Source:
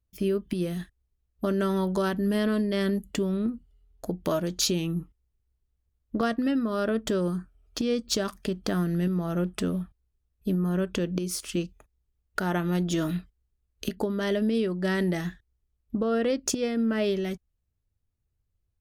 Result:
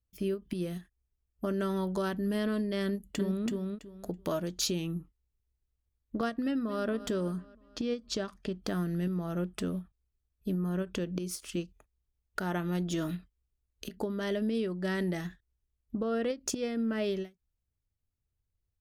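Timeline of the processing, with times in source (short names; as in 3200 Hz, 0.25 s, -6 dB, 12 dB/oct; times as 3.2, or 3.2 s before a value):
0.81–1.54 bell 3900 Hz -13 dB 0.24 oct
2.86–3.45 echo throw 0.33 s, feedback 20%, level -2.5 dB
6.45–6.86 echo throw 0.23 s, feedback 55%, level -14 dB
7.4–8.62 air absorption 65 m
whole clip: ending taper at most 300 dB/s; gain -5.5 dB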